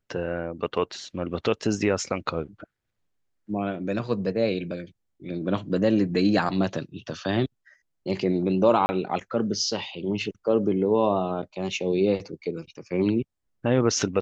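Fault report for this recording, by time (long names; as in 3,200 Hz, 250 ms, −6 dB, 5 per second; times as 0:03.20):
0:08.86–0:08.89: drop-out 30 ms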